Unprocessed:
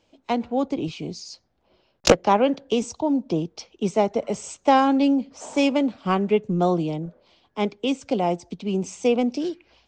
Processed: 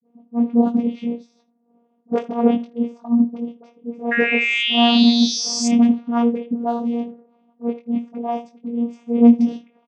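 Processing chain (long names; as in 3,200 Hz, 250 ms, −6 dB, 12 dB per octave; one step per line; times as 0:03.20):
in parallel at −2 dB: downward compressor, threshold −27 dBFS, peak gain reduction 16.5 dB
on the sum: volume swells 124 ms
on a send: ambience of single reflections 20 ms −3.5 dB, 80 ms −16 dB
on the sum: sound drawn into the spectrogram rise, 0:04.05–0:05.62, 1,800–6,300 Hz −12 dBFS
low-pass that shuts in the quiet parts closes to 840 Hz, open at −13 dBFS
all-pass dispersion highs, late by 61 ms, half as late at 580 Hz
channel vocoder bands 16, saw 236 Hz
double-tracking delay 30 ms −13.5 dB
level −1.5 dB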